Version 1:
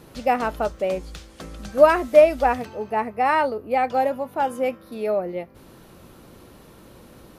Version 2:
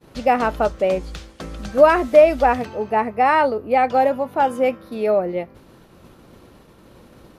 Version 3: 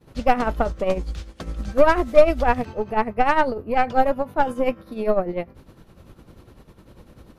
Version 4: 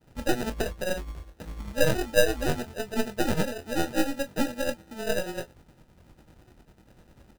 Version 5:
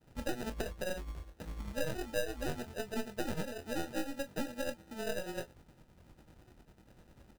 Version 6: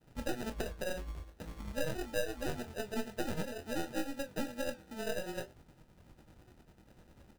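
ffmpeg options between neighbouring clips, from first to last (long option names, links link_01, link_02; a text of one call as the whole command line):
ffmpeg -i in.wav -filter_complex "[0:a]asplit=2[link_01][link_02];[link_02]alimiter=limit=-13dB:level=0:latency=1,volume=1dB[link_03];[link_01][link_03]amix=inputs=2:normalize=0,highshelf=frequency=8300:gain=-9,agate=range=-33dB:threshold=-35dB:ratio=3:detection=peak,volume=-1.5dB" out.wav
ffmpeg -i in.wav -af "tremolo=f=10:d=0.67,aeval=exprs='0.75*(cos(1*acos(clip(val(0)/0.75,-1,1)))-cos(1*PI/2))+0.0531*(cos(6*acos(clip(val(0)/0.75,-1,1)))-cos(6*PI/2))':channel_layout=same,lowshelf=frequency=130:gain=10.5,volume=-1dB" out.wav
ffmpeg -i in.wav -af "acrusher=samples=40:mix=1:aa=0.000001,aecho=1:1:25|39:0.299|0.133,volume=-8dB" out.wav
ffmpeg -i in.wav -af "acompressor=threshold=-29dB:ratio=3,volume=-4.5dB" out.wav
ffmpeg -i in.wav -af "flanger=delay=5.7:depth=8.3:regen=-79:speed=0.51:shape=triangular,volume=4.5dB" out.wav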